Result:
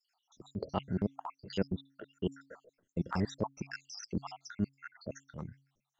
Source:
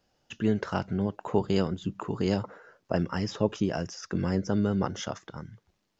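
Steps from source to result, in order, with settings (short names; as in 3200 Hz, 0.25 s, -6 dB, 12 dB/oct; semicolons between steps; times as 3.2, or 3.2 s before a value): random spectral dropouts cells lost 79%; transient shaper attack -7 dB, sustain -3 dB; de-hum 137 Hz, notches 2; gain +1.5 dB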